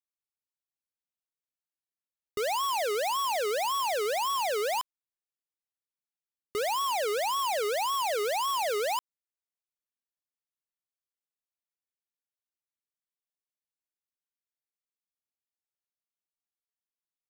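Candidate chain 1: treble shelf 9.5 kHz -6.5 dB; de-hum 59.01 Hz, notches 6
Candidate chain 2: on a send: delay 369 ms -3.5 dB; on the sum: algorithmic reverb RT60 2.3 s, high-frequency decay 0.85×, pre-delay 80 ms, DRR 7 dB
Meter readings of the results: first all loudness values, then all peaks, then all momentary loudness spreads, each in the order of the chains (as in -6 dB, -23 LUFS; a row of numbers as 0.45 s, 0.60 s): -29.5 LUFS, -27.0 LUFS; -27.5 dBFS, -17.5 dBFS; 5 LU, 12 LU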